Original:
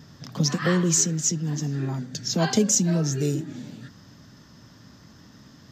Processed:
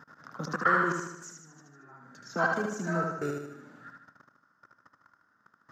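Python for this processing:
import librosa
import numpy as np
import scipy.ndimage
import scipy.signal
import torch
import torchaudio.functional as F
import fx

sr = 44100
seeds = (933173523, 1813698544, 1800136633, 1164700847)

y = fx.high_shelf_res(x, sr, hz=2100.0, db=-13.5, q=1.5)
y = fx.level_steps(y, sr, step_db=24)
y = fx.highpass(y, sr, hz=920.0, slope=6)
y = fx.peak_eq(y, sr, hz=1400.0, db=13.0, octaves=0.4)
y = fx.echo_feedback(y, sr, ms=76, feedback_pct=52, wet_db=-3.5)
y = y * librosa.db_to_amplitude(3.0)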